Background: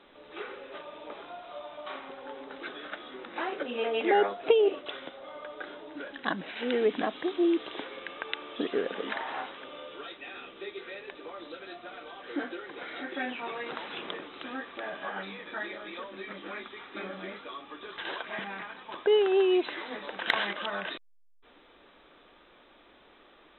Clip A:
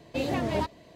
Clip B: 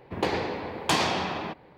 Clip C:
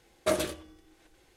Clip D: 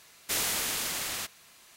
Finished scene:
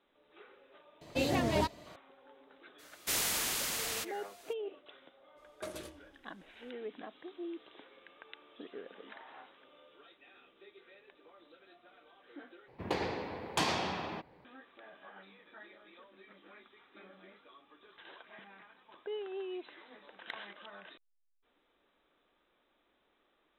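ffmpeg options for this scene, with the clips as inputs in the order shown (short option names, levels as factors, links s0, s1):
-filter_complex "[0:a]volume=0.141[s0];[1:a]highshelf=f=3300:g=7[s1];[3:a]acompressor=threshold=0.0282:ratio=4:attack=12:release=233:knee=1:detection=peak[s2];[s0]asplit=2[s3][s4];[s3]atrim=end=12.684[s5];[2:a]atrim=end=1.77,asetpts=PTS-STARTPTS,volume=0.422[s6];[s4]atrim=start=14.446[s7];[s1]atrim=end=0.95,asetpts=PTS-STARTPTS,volume=0.75,afade=t=in:d=0.004:c=hsin,afade=t=out:st=0.946:d=0.004:c=hsin,adelay=1010[s8];[4:a]atrim=end=1.76,asetpts=PTS-STARTPTS,volume=0.708,afade=t=in:d=0.02,afade=t=out:st=1.74:d=0.02,adelay=2780[s9];[s2]atrim=end=1.36,asetpts=PTS-STARTPTS,volume=0.335,afade=t=in:d=0.02,afade=t=out:st=1.34:d=0.02,adelay=5360[s10];[s5][s6]acrossfade=d=0.004:c1=hsin:c2=hsin[s11];[s11][s7]acrossfade=d=0.004:c1=hsin:c2=hsin[s12];[s12][s8][s9][s10]amix=inputs=4:normalize=0"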